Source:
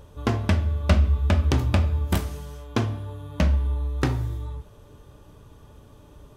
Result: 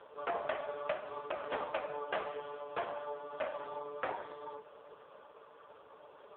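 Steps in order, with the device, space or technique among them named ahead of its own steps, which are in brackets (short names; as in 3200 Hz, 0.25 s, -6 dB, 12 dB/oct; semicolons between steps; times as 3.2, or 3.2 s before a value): elliptic band-pass 460–3700 Hz, stop band 60 dB; dynamic EQ 660 Hz, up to +5 dB, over -45 dBFS, Q 2.2; voicemail (BPF 320–2700 Hz; compressor 6:1, threshold -32 dBFS, peak gain reduction 13 dB; gain +6 dB; AMR-NB 4.75 kbps 8000 Hz)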